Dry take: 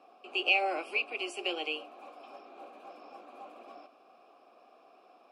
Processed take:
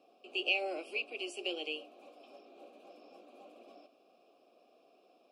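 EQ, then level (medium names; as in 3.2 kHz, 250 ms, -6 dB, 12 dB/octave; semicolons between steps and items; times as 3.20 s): high-order bell 1.3 kHz -11.5 dB; -2.5 dB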